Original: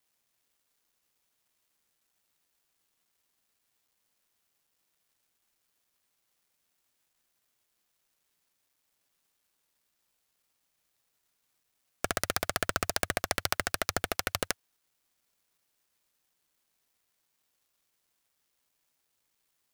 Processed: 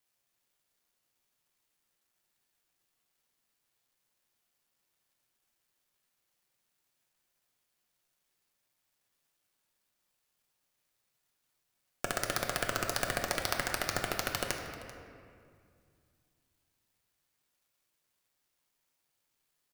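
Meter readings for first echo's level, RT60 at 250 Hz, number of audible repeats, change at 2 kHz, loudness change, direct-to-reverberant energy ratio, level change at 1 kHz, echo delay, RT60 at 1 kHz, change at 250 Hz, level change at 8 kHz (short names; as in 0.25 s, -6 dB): -17.0 dB, 2.9 s, 1, -1.5 dB, -2.5 dB, 2.0 dB, -1.5 dB, 0.389 s, 2.1 s, -1.0 dB, -3.0 dB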